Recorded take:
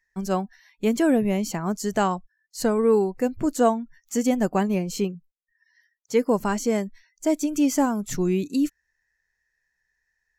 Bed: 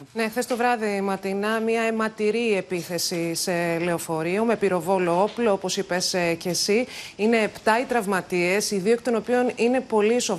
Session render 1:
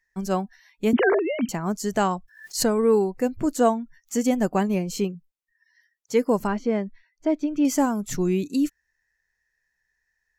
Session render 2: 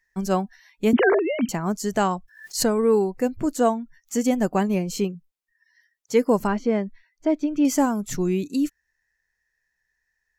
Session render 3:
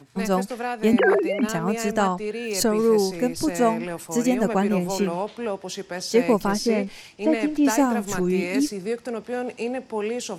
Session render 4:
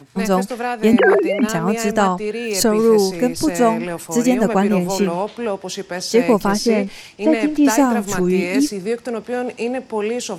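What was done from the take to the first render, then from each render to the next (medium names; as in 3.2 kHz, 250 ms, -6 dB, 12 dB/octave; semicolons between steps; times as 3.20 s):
0.93–1.49 s: formants replaced by sine waves; 2.14–3.15 s: swell ahead of each attack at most 110 dB/s; 6.47–7.65 s: distance through air 270 m
gain riding 2 s
add bed -7 dB
trim +5.5 dB; peak limiter -3 dBFS, peak gain reduction 2 dB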